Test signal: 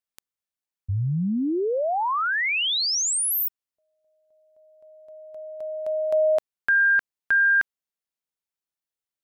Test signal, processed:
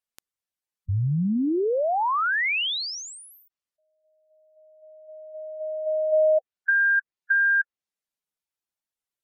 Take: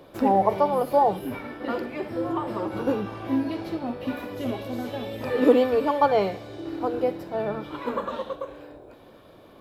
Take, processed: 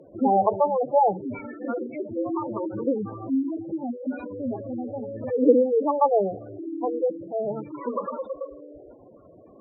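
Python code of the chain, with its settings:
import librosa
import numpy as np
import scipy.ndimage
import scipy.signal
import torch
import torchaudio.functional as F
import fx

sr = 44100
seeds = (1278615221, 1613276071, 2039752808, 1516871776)

y = fx.spec_gate(x, sr, threshold_db=-10, keep='strong')
y = fx.env_lowpass_down(y, sr, base_hz=1800.0, full_db=-19.5)
y = F.gain(torch.from_numpy(y), 1.0).numpy()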